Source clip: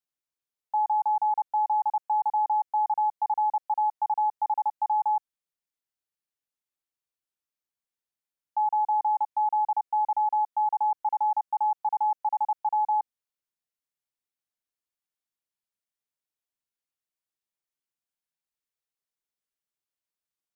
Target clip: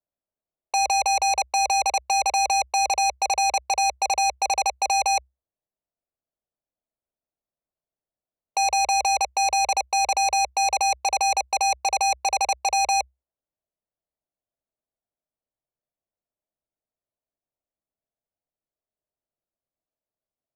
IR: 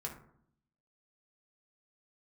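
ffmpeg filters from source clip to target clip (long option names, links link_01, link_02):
-af "equalizer=frequency=700:width=3.2:gain=10.5,adynamicsmooth=sensitivity=2:basefreq=860,aeval=exprs='0.158*(cos(1*acos(clip(val(0)/0.158,-1,1)))-cos(1*PI/2))+0.00316*(cos(2*acos(clip(val(0)/0.158,-1,1)))-cos(2*PI/2))+0.0708*(cos(7*acos(clip(val(0)/0.158,-1,1)))-cos(7*PI/2))':channel_layout=same,afreqshift=-65"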